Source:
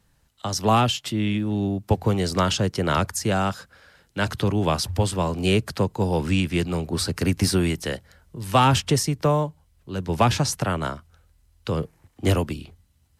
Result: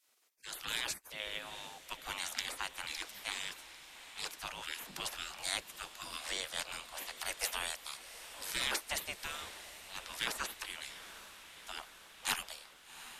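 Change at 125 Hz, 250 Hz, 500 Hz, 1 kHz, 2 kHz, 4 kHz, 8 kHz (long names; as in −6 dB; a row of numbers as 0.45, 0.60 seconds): −38.5, −33.5, −26.0, −20.0, −8.0, −9.0, −9.5 decibels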